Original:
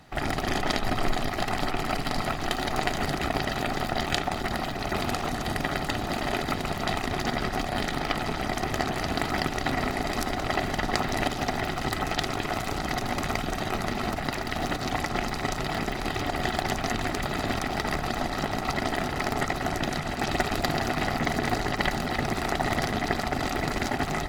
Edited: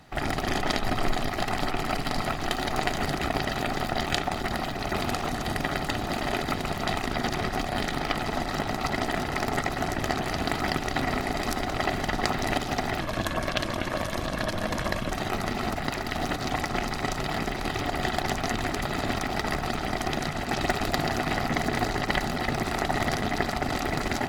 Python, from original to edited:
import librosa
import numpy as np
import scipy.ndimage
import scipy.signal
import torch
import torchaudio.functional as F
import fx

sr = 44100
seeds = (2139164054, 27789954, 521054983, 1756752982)

y = fx.edit(x, sr, fx.reverse_span(start_s=7.11, length_s=0.32),
    fx.swap(start_s=8.31, length_s=0.38, other_s=18.15, other_length_s=1.68),
    fx.speed_span(start_s=11.7, length_s=1.82, speed=0.86), tone=tone)